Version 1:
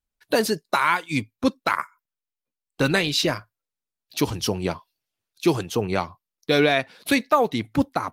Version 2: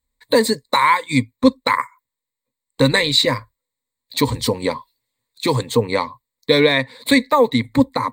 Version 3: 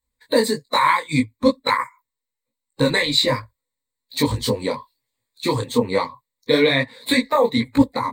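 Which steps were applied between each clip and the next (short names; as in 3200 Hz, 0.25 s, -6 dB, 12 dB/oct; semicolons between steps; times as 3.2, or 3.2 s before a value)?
ripple EQ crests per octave 1, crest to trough 16 dB; in parallel at -2.5 dB: compressor, threshold -23 dBFS, peak gain reduction 14.5 dB
bin magnitudes rounded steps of 15 dB; detuned doubles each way 40 cents; gain +2 dB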